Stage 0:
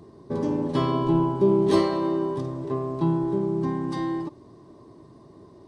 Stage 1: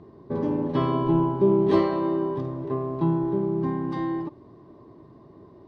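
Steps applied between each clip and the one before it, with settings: low-pass 2.8 kHz 12 dB/octave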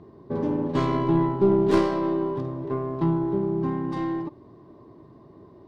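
tracing distortion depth 0.14 ms

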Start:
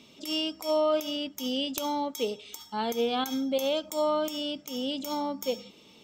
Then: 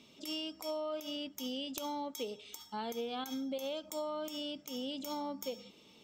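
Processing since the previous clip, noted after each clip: compression, threshold -30 dBFS, peak gain reduction 8 dB; trim -5.5 dB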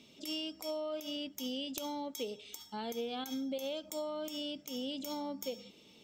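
peaking EQ 1.1 kHz -6 dB 0.8 oct; trim +1 dB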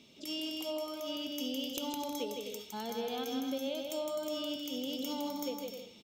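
band-stop 7.7 kHz, Q 23; on a send: bouncing-ball echo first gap 160 ms, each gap 0.6×, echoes 5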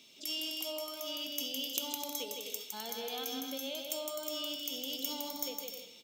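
tilt EQ +3 dB/octave; on a send at -13 dB: reverberation RT60 0.75 s, pre-delay 3 ms; on the sum: trim -2.5 dB

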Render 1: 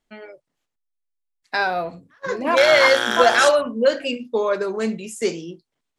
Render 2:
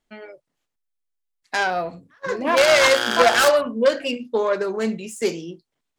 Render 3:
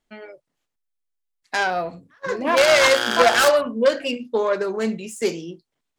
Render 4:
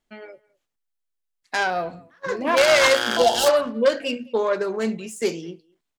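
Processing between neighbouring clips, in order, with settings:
self-modulated delay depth 0.16 ms
no audible change
speakerphone echo 210 ms, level -24 dB; time-frequency box 3.18–3.47 s, 1–2.7 kHz -16 dB; trim -1 dB

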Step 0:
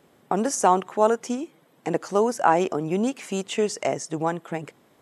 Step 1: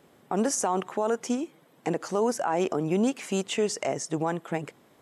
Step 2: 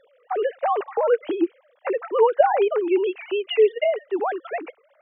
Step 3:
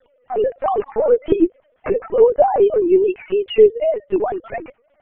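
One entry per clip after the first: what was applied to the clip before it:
peak limiter -16.5 dBFS, peak gain reduction 11.5 dB
formants replaced by sine waves; trim +6 dB
dynamic bell 350 Hz, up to +7 dB, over -32 dBFS, Q 0.83; LPC vocoder at 8 kHz pitch kept

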